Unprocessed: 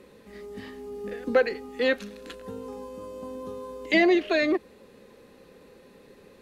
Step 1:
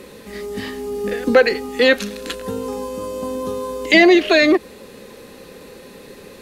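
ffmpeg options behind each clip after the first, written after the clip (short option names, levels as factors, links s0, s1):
-filter_complex "[0:a]highshelf=f=3300:g=7.5,asplit=2[s0][s1];[s1]alimiter=limit=0.1:level=0:latency=1:release=83,volume=1.12[s2];[s0][s2]amix=inputs=2:normalize=0,volume=1.88"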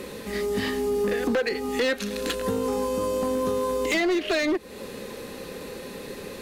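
-af "acompressor=threshold=0.0631:ratio=4,asoftclip=type=hard:threshold=0.0794,volume=1.33"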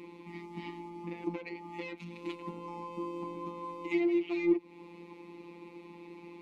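-filter_complex "[0:a]asplit=3[s0][s1][s2];[s0]bandpass=f=300:t=q:w=8,volume=1[s3];[s1]bandpass=f=870:t=q:w=8,volume=0.501[s4];[s2]bandpass=f=2240:t=q:w=8,volume=0.355[s5];[s3][s4][s5]amix=inputs=3:normalize=0,afftfilt=real='hypot(re,im)*cos(PI*b)':imag='0':win_size=1024:overlap=0.75,volume=1.88"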